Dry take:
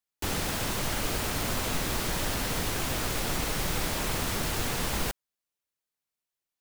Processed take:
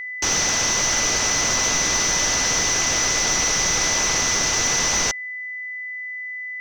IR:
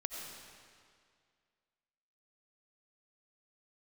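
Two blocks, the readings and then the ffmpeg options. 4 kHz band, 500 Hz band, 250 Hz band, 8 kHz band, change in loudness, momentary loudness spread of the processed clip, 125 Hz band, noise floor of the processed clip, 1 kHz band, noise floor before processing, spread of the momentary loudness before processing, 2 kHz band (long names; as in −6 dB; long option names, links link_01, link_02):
+12.0 dB, +5.5 dB, +2.0 dB, +18.0 dB, +11.5 dB, 12 LU, −0.5 dB, −32 dBFS, +7.5 dB, below −85 dBFS, 1 LU, +12.5 dB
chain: -filter_complex "[0:a]lowpass=frequency=6000:width_type=q:width=14,asplit=2[link_01][link_02];[link_02]highpass=frequency=720:poles=1,volume=11dB,asoftclip=type=tanh:threshold=-12dB[link_03];[link_01][link_03]amix=inputs=2:normalize=0,lowpass=frequency=3400:poles=1,volume=-6dB,aeval=exprs='val(0)+0.0224*sin(2*PI*2000*n/s)':channel_layout=same,volume=4.5dB"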